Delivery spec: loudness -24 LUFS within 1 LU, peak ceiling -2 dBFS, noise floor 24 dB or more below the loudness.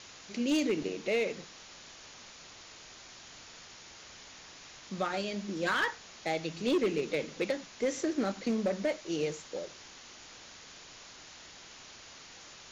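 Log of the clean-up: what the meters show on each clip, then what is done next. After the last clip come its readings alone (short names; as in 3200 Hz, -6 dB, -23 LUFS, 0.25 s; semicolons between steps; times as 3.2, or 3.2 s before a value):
clipped 0.6%; flat tops at -23.0 dBFS; noise floor -52 dBFS; noise floor target -57 dBFS; loudness -33.0 LUFS; peak -23.0 dBFS; loudness target -24.0 LUFS
-> clip repair -23 dBFS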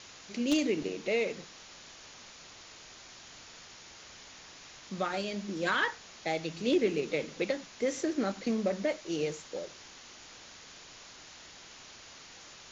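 clipped 0.0%; noise floor -52 dBFS; noise floor target -57 dBFS
-> denoiser 6 dB, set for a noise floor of -52 dBFS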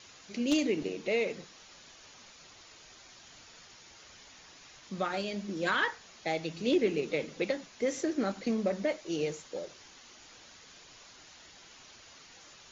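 noise floor -55 dBFS; noise floor target -57 dBFS
-> denoiser 6 dB, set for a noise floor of -55 dBFS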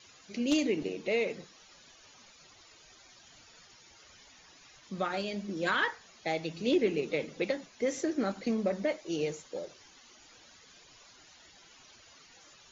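noise floor -58 dBFS; loudness -32.5 LUFS; peak -14.0 dBFS; loudness target -24.0 LUFS
-> gain +8.5 dB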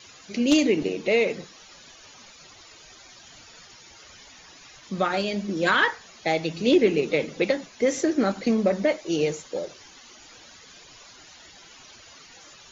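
loudness -24.0 LUFS; peak -5.5 dBFS; noise floor -49 dBFS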